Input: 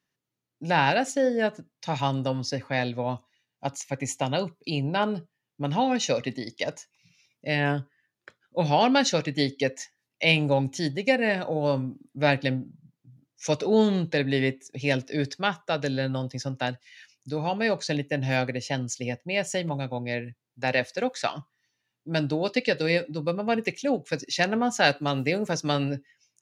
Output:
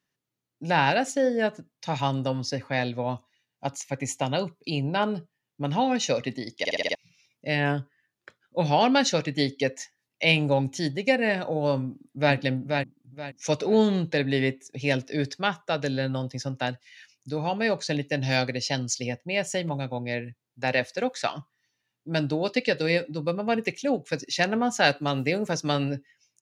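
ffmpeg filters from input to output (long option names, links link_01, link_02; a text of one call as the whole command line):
ffmpeg -i in.wav -filter_complex "[0:a]asplit=2[link_01][link_02];[link_02]afade=type=in:start_time=11.81:duration=0.01,afade=type=out:start_time=12.35:duration=0.01,aecho=0:1:480|960|1440|1920:0.595662|0.178699|0.0536096|0.0160829[link_03];[link_01][link_03]amix=inputs=2:normalize=0,asettb=1/sr,asplit=3[link_04][link_05][link_06];[link_04]atrim=end=18.014[link_07];[link_05]atrim=start=18.01:end=19.07,asetpts=PTS-STARTPTS,afade=type=in:duration=0.004:curve=qsin,afade=type=out:start_time=1.056:duration=0.004:curve=qsin,equalizer=frequency=4700:width_type=o:width=0.81:gain=10.5[link_08];[link_06]atrim=start=19.066[link_09];[link_07][link_08]acrossfade=duration=0.004:curve1=hsin:curve2=qsin[link_10];[link_10][link_09]acrossfade=duration=0.004:curve1=qsin:curve2=hsin,asplit=7[link_11][link_12][link_13][link_14][link_15][link_16][link_17];[link_11]atrim=end=6.652[link_18];[link_12]atrim=start=6.588:end=6.652[link_19];[link_13]atrim=start=6.588:end=6.652[link_20];[link_14]atrim=start=6.588:end=6.652[link_21];[link_15]atrim=start=6.588:end=6.652[link_22];[link_16]atrim=start=6.588:end=6.652[link_23];[link_17]atrim=start=6.948[link_24];[link_18][link_19]acrossfade=duration=0.004:curve1=hsin:curve2=hsin[link_25];[link_25][link_20]acrossfade=duration=0.004:curve1=hsin:curve2=hsin[link_26];[link_26][link_21]acrossfade=duration=0.004:curve1=hsin:curve2=hsin[link_27];[link_27][link_22]acrossfade=duration=0.004:curve1=hsin:curve2=hsin[link_28];[link_28][link_23]acrossfade=duration=0.004:curve1=hsin:curve2=hsin[link_29];[link_29][link_24]acrossfade=duration=0.004:curve1=hsin:curve2=hsin" out.wav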